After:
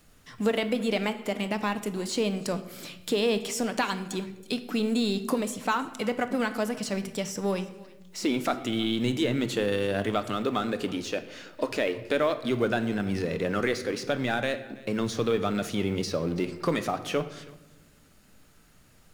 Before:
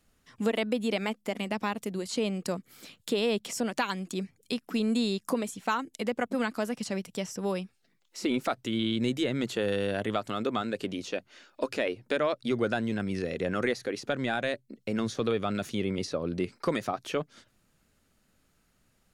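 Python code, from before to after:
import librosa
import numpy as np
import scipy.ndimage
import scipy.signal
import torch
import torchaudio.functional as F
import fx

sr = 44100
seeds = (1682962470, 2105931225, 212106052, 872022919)

y = fx.law_mismatch(x, sr, coded='mu')
y = y + 10.0 ** (-22.0 / 20.0) * np.pad(y, (int(327 * sr / 1000.0), 0))[:len(y)]
y = fx.room_shoebox(y, sr, seeds[0], volume_m3=430.0, walls='mixed', distance_m=0.43)
y = y * librosa.db_to_amplitude(1.0)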